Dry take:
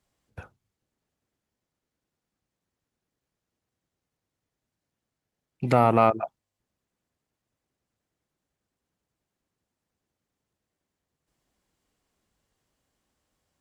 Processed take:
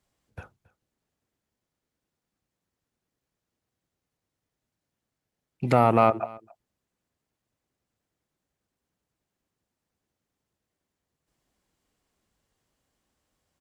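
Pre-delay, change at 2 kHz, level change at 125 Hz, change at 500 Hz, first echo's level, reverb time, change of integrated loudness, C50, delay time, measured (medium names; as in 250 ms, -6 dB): no reverb, 0.0 dB, 0.0 dB, 0.0 dB, -23.0 dB, no reverb, -0.5 dB, no reverb, 274 ms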